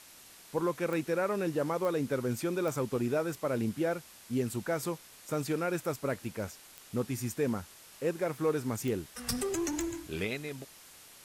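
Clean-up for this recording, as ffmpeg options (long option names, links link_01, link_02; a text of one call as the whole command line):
ffmpeg -i in.wav -af "adeclick=threshold=4,afwtdn=0.0025" out.wav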